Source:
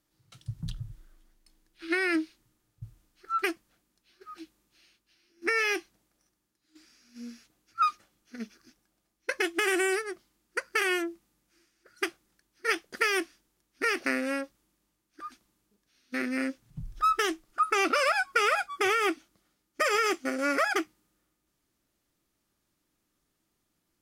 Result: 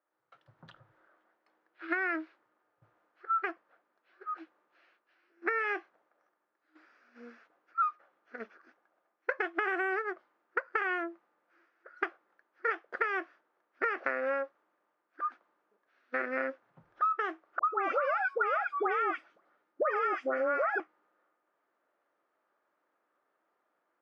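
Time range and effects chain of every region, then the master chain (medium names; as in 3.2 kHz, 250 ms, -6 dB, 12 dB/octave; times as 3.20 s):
17.59–20.80 s: bass shelf 330 Hz +7.5 dB + phase dispersion highs, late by 116 ms, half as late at 1.6 kHz
whole clip: level rider gain up to 8.5 dB; Chebyshev band-pass 530–1500 Hz, order 2; compression 6:1, threshold -28 dBFS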